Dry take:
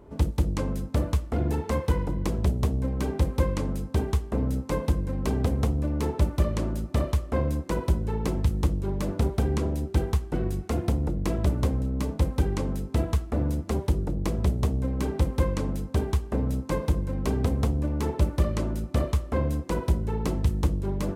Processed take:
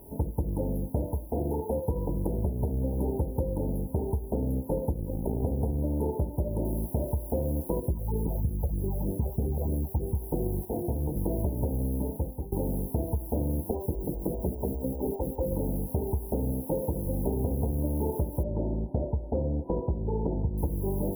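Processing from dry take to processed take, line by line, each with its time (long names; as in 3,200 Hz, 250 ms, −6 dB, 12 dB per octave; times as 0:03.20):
0:01.06–0:01.85: low-shelf EQ 250 Hz −5.5 dB
0:02.48–0:03.00: delay throw 290 ms, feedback 75%, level −16.5 dB
0:04.94–0:05.43: amplitude modulation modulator 56 Hz, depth 60%
0:06.65: noise floor change −52 dB −42 dB
0:07.80–0:10.15: all-pass phaser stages 8, 3.2 Hz, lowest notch 280–1,400 Hz
0:10.65–0:11.16: micro pitch shift up and down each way 26 cents
0:11.86–0:12.52: fade out, to −19 dB
0:13.71–0:15.52: phaser with staggered stages 5 Hz
0:16.52–0:17.06: high-pass filter 110 Hz 6 dB per octave
0:18.43–0:20.58: low-pass filter 1,600 Hz
whole clip: brick-wall band-stop 990–10,000 Hz; dynamic equaliser 450 Hz, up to +4 dB, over −43 dBFS, Q 1.5; downward compressor 10 to 1, threshold −24 dBFS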